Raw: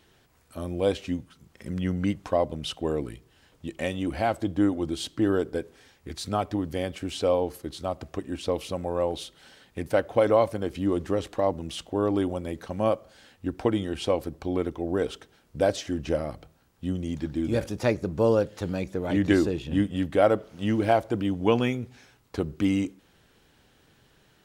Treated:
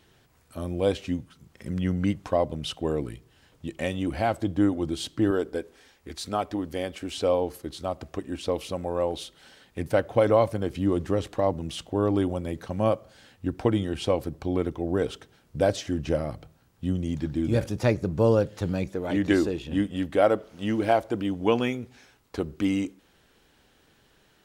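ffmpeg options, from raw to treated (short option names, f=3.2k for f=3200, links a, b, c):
-af "asetnsamples=n=441:p=0,asendcmd='5.31 equalizer g -8;7.18 equalizer g -1;9.79 equalizer g 5.5;18.89 equalizer g -5',equalizer=f=120:t=o:w=1.2:g=3"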